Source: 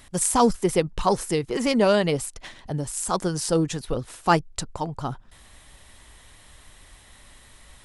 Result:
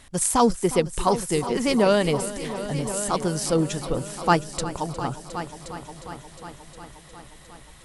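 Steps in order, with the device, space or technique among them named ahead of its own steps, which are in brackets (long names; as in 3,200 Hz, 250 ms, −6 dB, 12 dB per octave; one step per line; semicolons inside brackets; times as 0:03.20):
multi-head tape echo (echo machine with several playback heads 358 ms, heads all three, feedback 54%, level −16 dB; tape wow and flutter 11 cents)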